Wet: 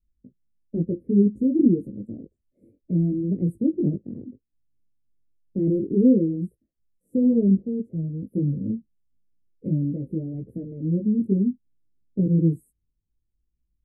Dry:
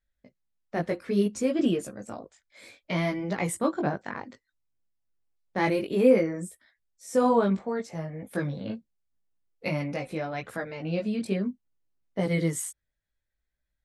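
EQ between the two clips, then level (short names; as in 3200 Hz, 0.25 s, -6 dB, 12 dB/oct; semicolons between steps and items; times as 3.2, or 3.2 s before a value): inverse Chebyshev band-stop 830–5200 Hz, stop band 50 dB; air absorption 400 m; dynamic EQ 750 Hz, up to -4 dB, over -56 dBFS, Q 3.4; +8.5 dB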